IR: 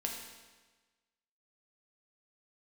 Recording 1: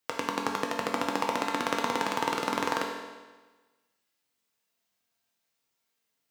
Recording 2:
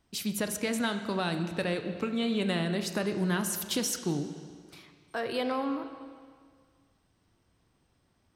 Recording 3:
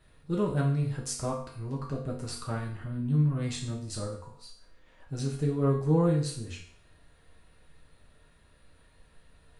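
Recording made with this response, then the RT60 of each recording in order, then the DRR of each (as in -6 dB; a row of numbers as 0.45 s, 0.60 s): 1; 1.3 s, 1.9 s, 0.55 s; -0.5 dB, 7.5 dB, -3.5 dB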